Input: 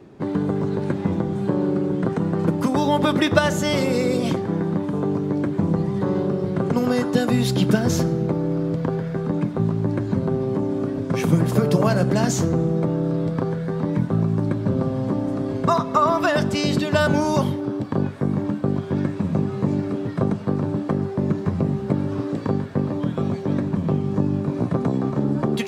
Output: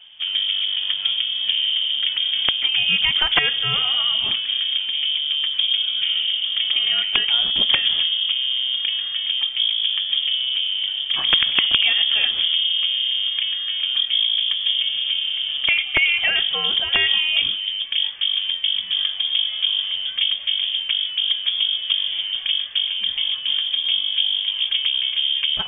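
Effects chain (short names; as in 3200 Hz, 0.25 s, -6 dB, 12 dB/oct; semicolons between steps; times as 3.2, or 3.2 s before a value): wrapped overs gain 7 dB; inverted band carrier 3400 Hz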